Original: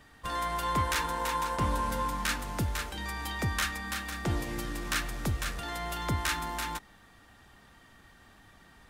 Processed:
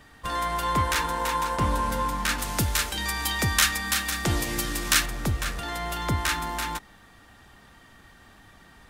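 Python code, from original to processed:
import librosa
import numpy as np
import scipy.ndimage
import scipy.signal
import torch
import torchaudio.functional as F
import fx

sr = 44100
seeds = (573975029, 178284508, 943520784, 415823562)

y = fx.high_shelf(x, sr, hz=2500.0, db=10.0, at=(2.38, 5.06))
y = y * librosa.db_to_amplitude(4.5)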